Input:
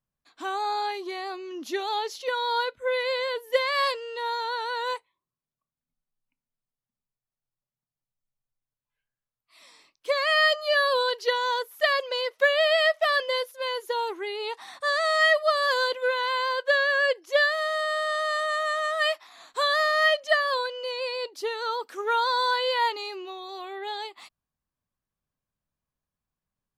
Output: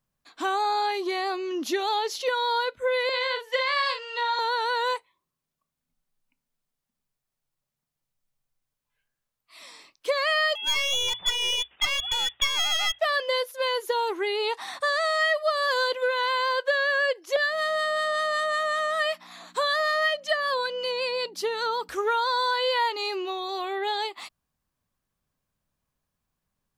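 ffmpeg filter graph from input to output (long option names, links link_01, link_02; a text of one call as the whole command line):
ffmpeg -i in.wav -filter_complex "[0:a]asettb=1/sr,asplit=3[link_01][link_02][link_03];[link_01]atrim=end=3.094[link_04];[link_02]atrim=start=3.09:end=4.39,asetpts=PTS-STARTPTS,afade=type=in:duration=0.004:curve=qsin,afade=type=out:start_time=1.296:duration=0.004:curve=qsin,acrossover=split=580 7300:gain=0.0708 1 0.0708[link_05][link_06][link_07];[link_05][link_06][link_07]amix=inputs=3:normalize=0,asplit=2[link_08][link_09];[link_09]adelay=42,volume=-6.5dB[link_10];[link_08][link_10]amix=inputs=2:normalize=0,atrim=end_sample=57330[link_11];[link_03]atrim=start=4.386[link_12];[link_04][link_11]acrossfade=duration=0.004:curve1=hsin:curve2=qsin[link_13];[link_13][link_12]acrossfade=duration=0.004:curve1=qsin:curve2=hsin,asettb=1/sr,asplit=3[link_14][link_15][link_16];[link_14]atrim=end=10.554[link_17];[link_15]atrim=start=10.55:end=12.99,asetpts=PTS-STARTPTS,afade=type=in:duration=0.004:curve=qsin,afade=type=out:start_time=2.436:duration=0.004:curve=qsin,equalizer=frequency=230:width=0.91:gain=7.5,lowpass=frequency=3300:width_type=q:width=0.5098,lowpass=frequency=3300:width_type=q:width=0.6013,lowpass=frequency=3300:width_type=q:width=0.9,lowpass=frequency=3300:width_type=q:width=2.563,afreqshift=-3900,aeval=exprs='clip(val(0),-1,0.0299)':channel_layout=same[link_18];[link_16]atrim=start=12.986[link_19];[link_17][link_18]acrossfade=duration=0.004:curve1=hsin:curve2=qsin[link_20];[link_20][link_19]acrossfade=duration=0.004:curve1=qsin:curve2=hsin,asettb=1/sr,asplit=3[link_21][link_22][link_23];[link_21]atrim=end=17.364[link_24];[link_22]atrim=start=17.36:end=21.89,asetpts=PTS-STARTPTS,afade=type=in:duration=0.004:curve=qsin,afade=type=out:start_time=4.526:duration=0.004:curve=qsin,acrossover=split=980[link_25][link_26];[link_25]aeval=exprs='val(0)*(1-0.5/2+0.5/2*cos(2*PI*5.3*n/s))':channel_layout=same[link_27];[link_26]aeval=exprs='val(0)*(1-0.5/2-0.5/2*cos(2*PI*5.3*n/s))':channel_layout=same[link_28];[link_27][link_28]amix=inputs=2:normalize=0,aeval=exprs='val(0)+0.00141*(sin(2*PI*60*n/s)+sin(2*PI*2*60*n/s)/2+sin(2*PI*3*60*n/s)/3+sin(2*PI*4*60*n/s)/4+sin(2*PI*5*60*n/s)/5)':channel_layout=same[link_29];[link_23]atrim=start=21.886[link_30];[link_24][link_29]acrossfade=duration=0.004:curve1=hsin:curve2=qsin[link_31];[link_31][link_30]acrossfade=duration=0.004:curve1=qsin:curve2=hsin,bandreject=frequency=60:width_type=h:width=6,bandreject=frequency=120:width_type=h:width=6,acompressor=threshold=-31dB:ratio=3,volume=7dB" out.wav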